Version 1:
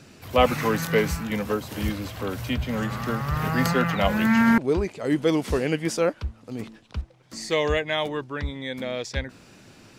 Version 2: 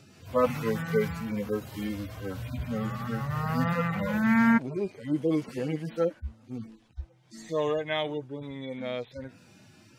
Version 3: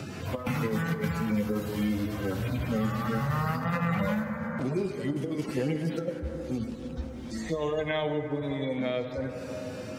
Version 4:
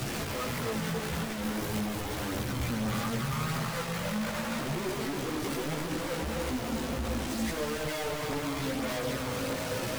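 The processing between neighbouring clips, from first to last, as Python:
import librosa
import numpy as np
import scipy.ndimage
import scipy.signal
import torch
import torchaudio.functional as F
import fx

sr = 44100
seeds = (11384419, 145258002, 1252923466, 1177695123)

y1 = fx.hpss_only(x, sr, part='harmonic')
y1 = F.gain(torch.from_numpy(y1), -3.0).numpy()
y2 = fx.over_compress(y1, sr, threshold_db=-29.0, ratio=-0.5)
y2 = fx.rev_plate(y2, sr, seeds[0], rt60_s=3.2, hf_ratio=0.25, predelay_ms=0, drr_db=7.0)
y2 = fx.band_squash(y2, sr, depth_pct=70)
y3 = np.sign(y2) * np.sqrt(np.mean(np.square(y2)))
y3 = fx.chorus_voices(y3, sr, voices=2, hz=0.84, base_ms=16, depth_ms=2.6, mix_pct=55)
y3 = y3 + 10.0 ** (-8.5 / 20.0) * np.pad(y3, (int(273 * sr / 1000.0), 0))[:len(y3)]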